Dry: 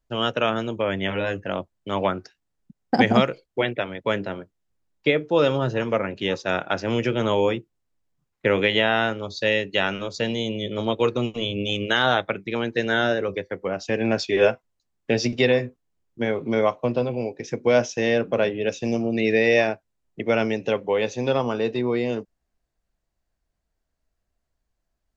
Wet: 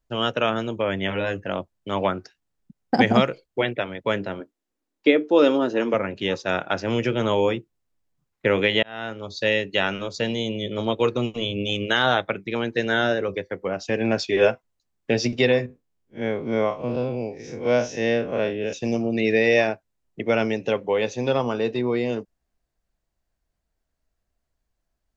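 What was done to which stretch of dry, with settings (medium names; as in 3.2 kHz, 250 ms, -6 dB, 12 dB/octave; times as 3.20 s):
4.40–5.94 s: resonant low shelf 190 Hz -11.5 dB, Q 3
8.83–9.41 s: fade in
15.66–18.73 s: spectral blur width 93 ms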